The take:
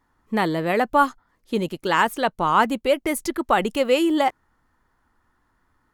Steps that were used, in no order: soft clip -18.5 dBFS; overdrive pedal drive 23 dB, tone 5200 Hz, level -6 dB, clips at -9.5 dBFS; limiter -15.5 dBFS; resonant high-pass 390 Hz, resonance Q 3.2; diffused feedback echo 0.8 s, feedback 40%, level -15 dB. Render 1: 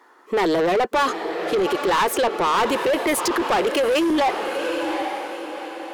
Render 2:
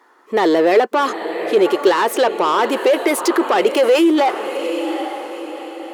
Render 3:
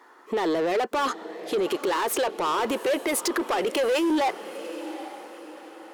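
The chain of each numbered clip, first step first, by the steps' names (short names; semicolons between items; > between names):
resonant high-pass > soft clip > diffused feedback echo > overdrive pedal > limiter; limiter > diffused feedback echo > soft clip > overdrive pedal > resonant high-pass; overdrive pedal > resonant high-pass > limiter > diffused feedback echo > soft clip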